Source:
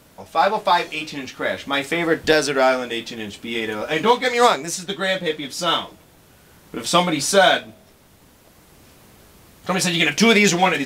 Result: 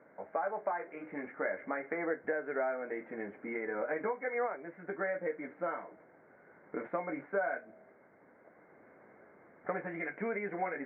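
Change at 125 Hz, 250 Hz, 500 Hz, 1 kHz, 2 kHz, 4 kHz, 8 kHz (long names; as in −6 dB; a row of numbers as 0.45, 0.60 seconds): −24.0 dB, −18.5 dB, −15.0 dB, −19.0 dB, −17.5 dB, below −40 dB, below −40 dB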